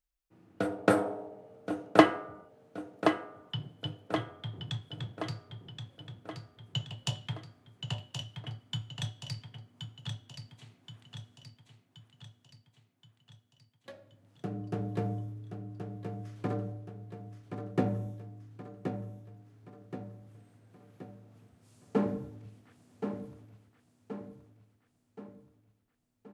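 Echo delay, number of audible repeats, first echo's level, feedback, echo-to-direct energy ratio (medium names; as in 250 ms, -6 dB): 1075 ms, 5, -7.0 dB, 50%, -5.5 dB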